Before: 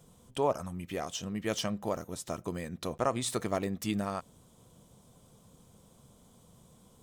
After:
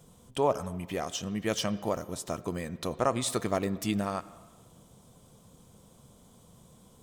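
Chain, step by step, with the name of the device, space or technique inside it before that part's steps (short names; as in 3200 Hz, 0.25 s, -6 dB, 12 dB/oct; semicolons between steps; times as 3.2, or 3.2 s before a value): filtered reverb send (on a send: HPF 170 Hz + LPF 4000 Hz 12 dB/oct + reverb RT60 1.5 s, pre-delay 72 ms, DRR 17 dB); on the sum: gain +2.5 dB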